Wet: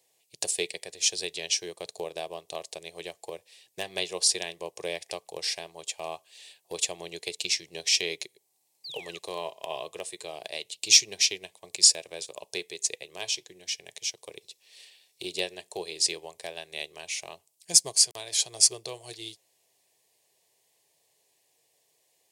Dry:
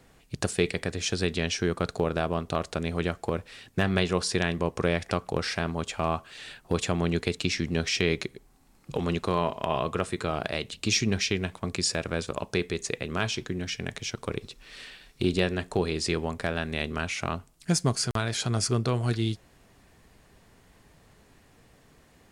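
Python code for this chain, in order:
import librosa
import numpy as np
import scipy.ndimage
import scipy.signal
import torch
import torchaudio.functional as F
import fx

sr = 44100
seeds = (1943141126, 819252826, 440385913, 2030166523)

y = scipy.signal.sosfilt(scipy.signal.cheby1(2, 1.0, 240.0, 'highpass', fs=sr, output='sos'), x)
y = fx.high_shelf(y, sr, hz=5400.0, db=8.5)
y = fx.spec_paint(y, sr, seeds[0], shape='fall', start_s=8.84, length_s=0.35, low_hz=1100.0, high_hz=4900.0, level_db=-37.0)
y = fx.tilt_shelf(y, sr, db=-5.0, hz=830.0)
y = fx.fixed_phaser(y, sr, hz=570.0, stages=4)
y = fx.upward_expand(y, sr, threshold_db=-44.0, expansion=1.5)
y = y * 10.0 ** (3.0 / 20.0)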